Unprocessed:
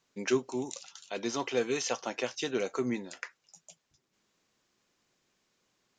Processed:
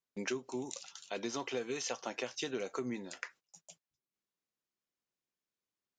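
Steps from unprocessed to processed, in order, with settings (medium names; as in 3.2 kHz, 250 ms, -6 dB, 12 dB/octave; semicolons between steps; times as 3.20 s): gate -57 dBFS, range -20 dB; compression 6:1, threshold -33 dBFS, peak gain reduction 11 dB; trim -1 dB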